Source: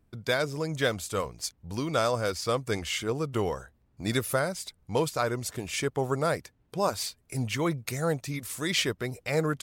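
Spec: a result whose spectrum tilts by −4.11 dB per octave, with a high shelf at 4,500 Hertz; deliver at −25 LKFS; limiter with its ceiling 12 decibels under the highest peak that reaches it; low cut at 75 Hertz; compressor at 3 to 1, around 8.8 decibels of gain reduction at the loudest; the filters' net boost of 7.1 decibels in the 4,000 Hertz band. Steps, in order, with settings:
high-pass filter 75 Hz
parametric band 4,000 Hz +6 dB
high-shelf EQ 4,500 Hz +6 dB
downward compressor 3 to 1, threshold −30 dBFS
level +11 dB
brickwall limiter −14.5 dBFS

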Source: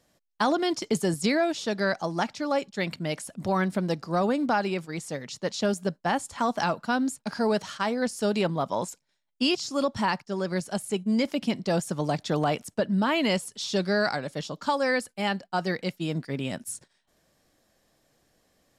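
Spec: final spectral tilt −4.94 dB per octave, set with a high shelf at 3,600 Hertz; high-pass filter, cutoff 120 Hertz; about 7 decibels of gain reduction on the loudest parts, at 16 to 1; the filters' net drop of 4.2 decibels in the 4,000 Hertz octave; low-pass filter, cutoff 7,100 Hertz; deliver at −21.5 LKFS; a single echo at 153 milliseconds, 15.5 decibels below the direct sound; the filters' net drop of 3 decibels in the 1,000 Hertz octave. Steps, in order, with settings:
high-pass filter 120 Hz
low-pass filter 7,100 Hz
parametric band 1,000 Hz −4 dB
high-shelf EQ 3,600 Hz +4 dB
parametric band 4,000 Hz −8 dB
downward compressor 16 to 1, threshold −28 dBFS
single-tap delay 153 ms −15.5 dB
level +13 dB

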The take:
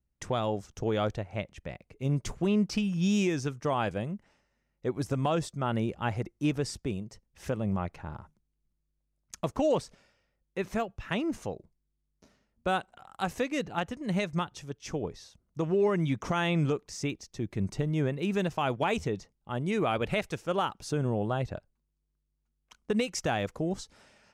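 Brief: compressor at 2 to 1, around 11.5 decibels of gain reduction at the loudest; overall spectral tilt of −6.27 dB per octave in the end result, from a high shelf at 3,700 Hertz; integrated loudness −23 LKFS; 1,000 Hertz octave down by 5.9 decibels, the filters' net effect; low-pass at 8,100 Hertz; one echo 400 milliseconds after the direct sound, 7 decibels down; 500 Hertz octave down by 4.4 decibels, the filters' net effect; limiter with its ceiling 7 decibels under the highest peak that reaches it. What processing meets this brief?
low-pass filter 8,100 Hz
parametric band 500 Hz −4 dB
parametric band 1,000 Hz −6 dB
high-shelf EQ 3,700 Hz −8 dB
downward compressor 2 to 1, threshold −46 dBFS
brickwall limiter −34.5 dBFS
single-tap delay 400 ms −7 dB
level +22.5 dB

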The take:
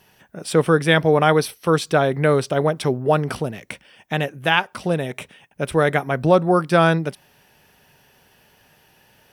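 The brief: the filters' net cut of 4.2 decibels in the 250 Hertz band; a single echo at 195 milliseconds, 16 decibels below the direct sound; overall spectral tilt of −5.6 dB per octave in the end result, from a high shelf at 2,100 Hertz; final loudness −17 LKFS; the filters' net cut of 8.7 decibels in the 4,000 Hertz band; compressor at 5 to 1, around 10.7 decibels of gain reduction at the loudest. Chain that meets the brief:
parametric band 250 Hz −7.5 dB
high-shelf EQ 2,100 Hz −5 dB
parametric band 4,000 Hz −7 dB
downward compressor 5 to 1, threshold −25 dBFS
single-tap delay 195 ms −16 dB
level +13 dB

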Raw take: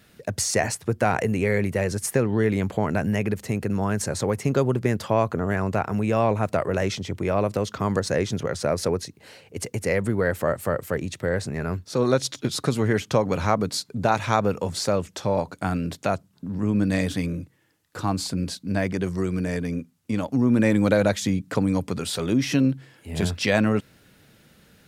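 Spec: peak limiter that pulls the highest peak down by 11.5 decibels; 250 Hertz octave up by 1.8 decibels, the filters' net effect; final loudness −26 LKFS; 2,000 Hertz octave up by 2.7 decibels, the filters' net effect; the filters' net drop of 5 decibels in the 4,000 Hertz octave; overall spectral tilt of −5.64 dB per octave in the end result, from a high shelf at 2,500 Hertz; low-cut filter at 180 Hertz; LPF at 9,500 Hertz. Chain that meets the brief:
high-pass filter 180 Hz
low-pass filter 9,500 Hz
parametric band 250 Hz +4 dB
parametric band 2,000 Hz +6 dB
high-shelf EQ 2,500 Hz −4.5 dB
parametric band 4,000 Hz −3.5 dB
level +2 dB
brickwall limiter −14.5 dBFS

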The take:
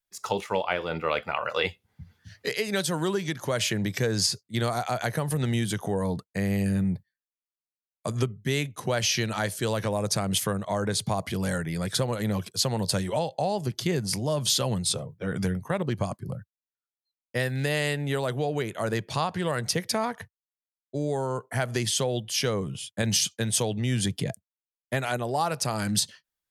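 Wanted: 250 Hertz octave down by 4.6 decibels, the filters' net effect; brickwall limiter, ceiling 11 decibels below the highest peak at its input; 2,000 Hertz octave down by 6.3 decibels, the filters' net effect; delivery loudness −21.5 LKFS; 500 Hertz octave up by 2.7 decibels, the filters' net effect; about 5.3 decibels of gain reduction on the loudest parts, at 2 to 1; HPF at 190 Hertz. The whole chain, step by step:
high-pass filter 190 Hz
parametric band 250 Hz −5 dB
parametric band 500 Hz +5 dB
parametric band 2,000 Hz −8.5 dB
downward compressor 2 to 1, threshold −30 dBFS
level +15 dB
brickwall limiter −11.5 dBFS

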